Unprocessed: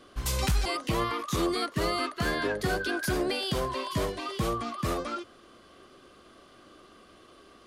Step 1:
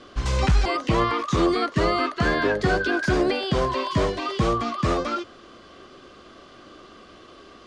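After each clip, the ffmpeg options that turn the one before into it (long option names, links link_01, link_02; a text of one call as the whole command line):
ffmpeg -i in.wav -filter_complex "[0:a]lowpass=frequency=7100:width=0.5412,lowpass=frequency=7100:width=1.3066,acrossover=split=2500[link_01][link_02];[link_02]acompressor=threshold=-42dB:ratio=4:attack=1:release=60[link_03];[link_01][link_03]amix=inputs=2:normalize=0,volume=7.5dB" out.wav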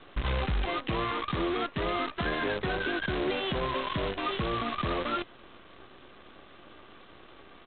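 ffmpeg -i in.wav -af "alimiter=limit=-20dB:level=0:latency=1:release=289,aresample=8000,acrusher=bits=6:dc=4:mix=0:aa=0.000001,aresample=44100,volume=-1.5dB" out.wav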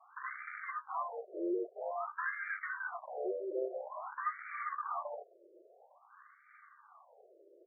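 ffmpeg -i in.wav -filter_complex "[0:a]acrossover=split=670[link_01][link_02];[link_01]aeval=exprs='val(0)*(1-0.5/2+0.5/2*cos(2*PI*2.5*n/s))':channel_layout=same[link_03];[link_02]aeval=exprs='val(0)*(1-0.5/2-0.5/2*cos(2*PI*2.5*n/s))':channel_layout=same[link_04];[link_03][link_04]amix=inputs=2:normalize=0,afftfilt=real='re*between(b*sr/1024,450*pow(1700/450,0.5+0.5*sin(2*PI*0.5*pts/sr))/1.41,450*pow(1700/450,0.5+0.5*sin(2*PI*0.5*pts/sr))*1.41)':imag='im*between(b*sr/1024,450*pow(1700/450,0.5+0.5*sin(2*PI*0.5*pts/sr))/1.41,450*pow(1700/450,0.5+0.5*sin(2*PI*0.5*pts/sr))*1.41)':win_size=1024:overlap=0.75" out.wav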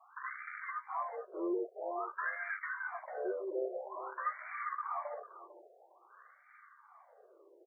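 ffmpeg -i in.wav -af "aecho=1:1:449:0.178" out.wav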